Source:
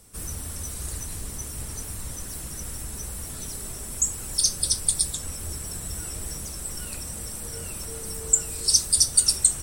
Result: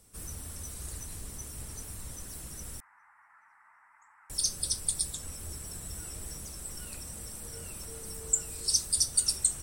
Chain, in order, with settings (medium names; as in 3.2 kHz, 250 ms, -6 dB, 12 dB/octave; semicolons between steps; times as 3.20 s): 2.80–4.30 s: elliptic band-pass 870–2000 Hz, stop band 40 dB; trim -7.5 dB